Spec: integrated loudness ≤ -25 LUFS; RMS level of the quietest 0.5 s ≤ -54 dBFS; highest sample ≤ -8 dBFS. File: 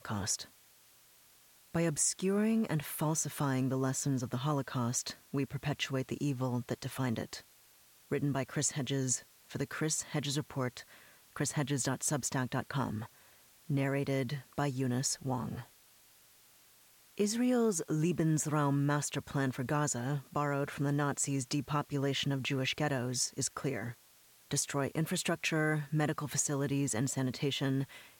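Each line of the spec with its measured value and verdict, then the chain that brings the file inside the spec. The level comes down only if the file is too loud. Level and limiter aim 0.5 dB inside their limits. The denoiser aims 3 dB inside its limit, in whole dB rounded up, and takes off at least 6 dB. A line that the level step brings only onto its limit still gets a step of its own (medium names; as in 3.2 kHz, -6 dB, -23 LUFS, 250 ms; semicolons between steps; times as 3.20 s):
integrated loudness -34.0 LUFS: pass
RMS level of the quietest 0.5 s -63 dBFS: pass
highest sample -18.5 dBFS: pass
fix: none needed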